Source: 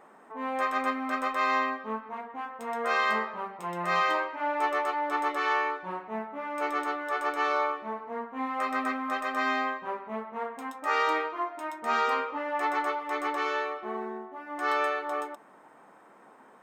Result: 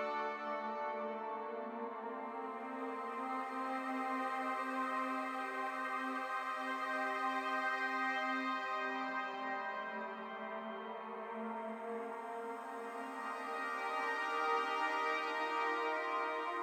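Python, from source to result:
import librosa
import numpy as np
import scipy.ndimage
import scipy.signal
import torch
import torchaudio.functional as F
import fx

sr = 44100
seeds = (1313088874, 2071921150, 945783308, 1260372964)

y = fx.rev_spring(x, sr, rt60_s=2.4, pass_ms=(54,), chirp_ms=35, drr_db=7.5)
y = fx.paulstretch(y, sr, seeds[0], factor=4.5, window_s=1.0, from_s=7.7)
y = y * librosa.db_to_amplitude(-9.0)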